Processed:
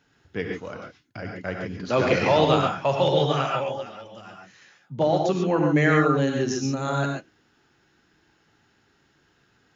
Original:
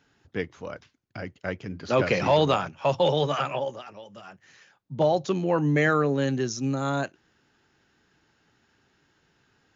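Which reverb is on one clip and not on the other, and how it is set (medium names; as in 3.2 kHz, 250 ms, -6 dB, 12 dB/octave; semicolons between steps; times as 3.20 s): gated-style reverb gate 160 ms rising, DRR 1 dB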